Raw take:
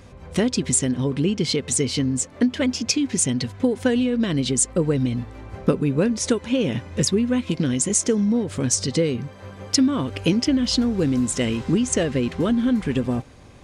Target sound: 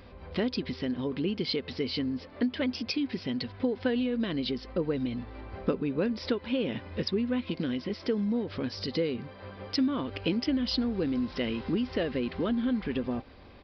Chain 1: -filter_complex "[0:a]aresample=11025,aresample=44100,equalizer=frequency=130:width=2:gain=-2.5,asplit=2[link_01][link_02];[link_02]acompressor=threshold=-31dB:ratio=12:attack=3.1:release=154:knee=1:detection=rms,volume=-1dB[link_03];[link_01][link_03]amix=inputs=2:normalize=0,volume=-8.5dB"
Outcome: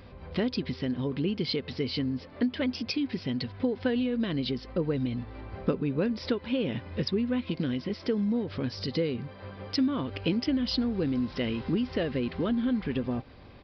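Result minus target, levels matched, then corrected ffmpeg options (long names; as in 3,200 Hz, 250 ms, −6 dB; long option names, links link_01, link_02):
125 Hz band +3.5 dB
-filter_complex "[0:a]aresample=11025,aresample=44100,equalizer=frequency=130:width=2:gain=-10,asplit=2[link_01][link_02];[link_02]acompressor=threshold=-31dB:ratio=12:attack=3.1:release=154:knee=1:detection=rms,volume=-1dB[link_03];[link_01][link_03]amix=inputs=2:normalize=0,volume=-8.5dB"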